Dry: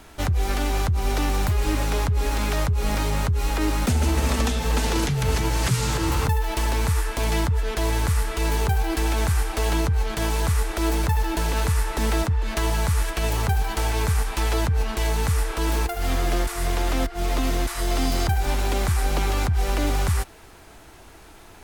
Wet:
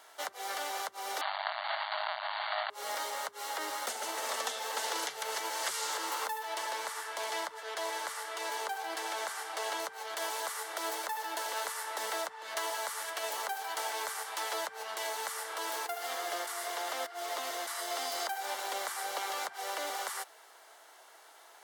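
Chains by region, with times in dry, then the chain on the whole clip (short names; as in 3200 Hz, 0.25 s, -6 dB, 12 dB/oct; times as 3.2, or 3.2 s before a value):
1.21–2.7 half-waves squared off + brick-wall FIR band-pass 590–4700 Hz
6.43–9.8 high shelf 12000 Hz -10 dB + flutter echo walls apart 12 m, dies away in 0.21 s
whole clip: HPF 540 Hz 24 dB/oct; notch 2500 Hz, Q 6.3; gain -6 dB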